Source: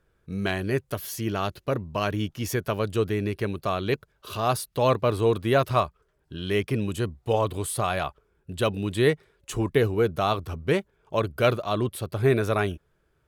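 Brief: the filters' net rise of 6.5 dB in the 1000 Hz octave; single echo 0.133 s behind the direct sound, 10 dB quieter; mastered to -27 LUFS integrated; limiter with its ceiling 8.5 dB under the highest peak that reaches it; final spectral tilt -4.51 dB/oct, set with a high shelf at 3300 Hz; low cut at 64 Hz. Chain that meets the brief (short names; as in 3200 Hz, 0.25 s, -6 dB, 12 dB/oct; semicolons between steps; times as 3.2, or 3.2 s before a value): HPF 64 Hz; bell 1000 Hz +7.5 dB; high shelf 3300 Hz +8.5 dB; limiter -9.5 dBFS; echo 0.133 s -10 dB; gain -2.5 dB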